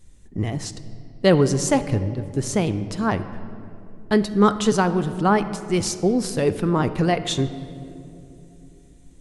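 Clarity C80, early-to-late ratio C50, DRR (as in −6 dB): 13.5 dB, 12.5 dB, 11.5 dB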